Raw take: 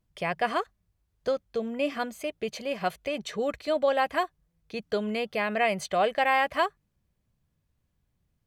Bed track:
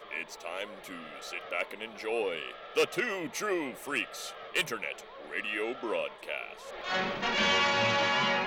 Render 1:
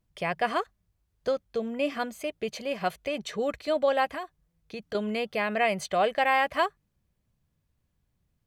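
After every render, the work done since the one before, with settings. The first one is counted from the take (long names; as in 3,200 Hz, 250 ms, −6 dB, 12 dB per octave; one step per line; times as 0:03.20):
0:04.05–0:04.95: downward compressor 3 to 1, threshold −33 dBFS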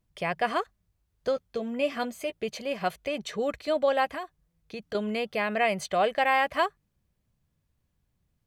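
0:01.35–0:02.34: double-tracking delay 12 ms −8 dB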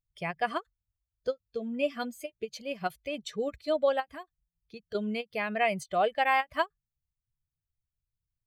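spectral dynamics exaggerated over time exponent 1.5
every ending faded ahead of time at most 580 dB per second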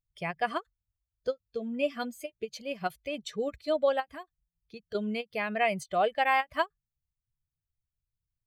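no processing that can be heard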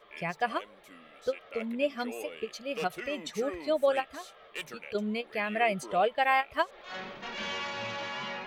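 mix in bed track −9.5 dB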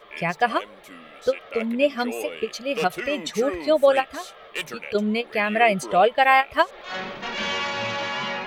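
level +9 dB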